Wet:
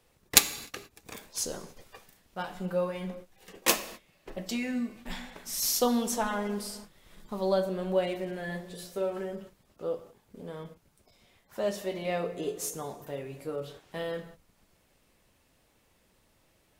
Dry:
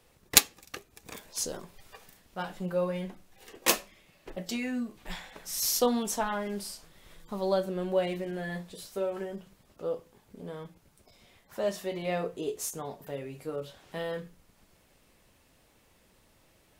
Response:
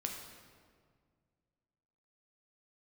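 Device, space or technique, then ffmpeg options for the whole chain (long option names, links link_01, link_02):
keyed gated reverb: -filter_complex "[0:a]asplit=3[link_01][link_02][link_03];[1:a]atrim=start_sample=2205[link_04];[link_02][link_04]afir=irnorm=-1:irlink=0[link_05];[link_03]apad=whole_len=740516[link_06];[link_05][link_06]sidechaingate=range=-33dB:threshold=-50dB:ratio=16:detection=peak,volume=-4dB[link_07];[link_01][link_07]amix=inputs=2:normalize=0,volume=-3.5dB"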